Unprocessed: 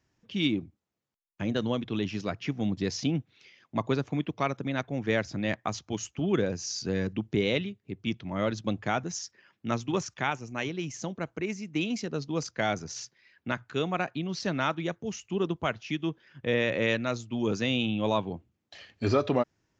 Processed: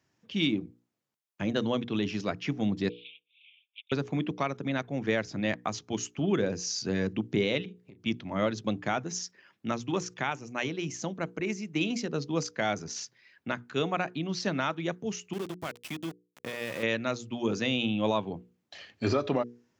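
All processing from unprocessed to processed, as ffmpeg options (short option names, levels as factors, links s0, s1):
-filter_complex "[0:a]asettb=1/sr,asplit=3[s0][s1][s2];[s0]atrim=end=2.894[s3];[s1]atrim=start=2.89:end=3.92,asetpts=PTS-STARTPTS,afade=t=in:d=0.004:c=qsin,afade=t=out:st=1.026:d=0.004:c=qsin,aeval=exprs='0.0316*(abs(mod(val(0)/0.0316+3,4)-2)-1)':c=same,asuperpass=centerf=2900:order=12:qfactor=2.2[s4];[s2]atrim=start=3.916[s5];[s3][s4]acrossfade=d=0.004:c1=hsin:c2=qsin[s6];[s6][s5]acrossfade=d=0.004:c1=qsin:c2=hsin,asettb=1/sr,asplit=3[s7][s8][s9];[s7]atrim=end=7.654[s10];[s8]atrim=start=7.65:end=8.06,asetpts=PTS-STARTPTS,afade=t=in:d=0.004:c=qsin,afade=t=out:st=0.406:d=0.004:c=qsin,acompressor=threshold=0.00501:ratio=12:attack=3.2:release=140:knee=1:detection=peak,asplit=2[s11][s12];[s12]adelay=33,volume=0.251[s13];[s11][s13]amix=inputs=2:normalize=0,atrim=end_sample=18081[s14];[s9]atrim=start=8.056[s15];[s10][s14]acrossfade=d=0.004:c1=hsin:c2=qsin[s16];[s16][s15]acrossfade=d=0.004:c1=qsin:c2=hsin,asettb=1/sr,asplit=3[s17][s18][s19];[s17]atrim=end=15.334[s20];[s18]atrim=start=15.33:end=16.83,asetpts=PTS-STARTPTS,afade=t=in:d=0.004:c=qsin,afade=t=out:st=1.496:d=0.004:c=qsin,acompressor=threshold=0.0178:ratio=2.5:attack=3.2:release=140:knee=1:detection=peak,aeval=exprs='val(0)+0.000316*(sin(2*PI*50*n/s)+sin(2*PI*2*50*n/s)/2+sin(2*PI*3*50*n/s)/3+sin(2*PI*4*50*n/s)/4+sin(2*PI*5*50*n/s)/5)':c=same,aeval=exprs='val(0)*gte(abs(val(0)),0.0106)':c=same[s21];[s19]atrim=start=16.826[s22];[s20][s21]acrossfade=d=0.004:c1=hsin:c2=qsin[s23];[s23][s22]acrossfade=d=0.004:c1=qsin:c2=hsin,highpass=110,bandreject=f=60:t=h:w=6,bandreject=f=120:t=h:w=6,bandreject=f=180:t=h:w=6,bandreject=f=240:t=h:w=6,bandreject=f=300:t=h:w=6,bandreject=f=360:t=h:w=6,bandreject=f=420:t=h:w=6,bandreject=f=480:t=h:w=6,alimiter=limit=0.133:level=0:latency=1:release=279,volume=1.19"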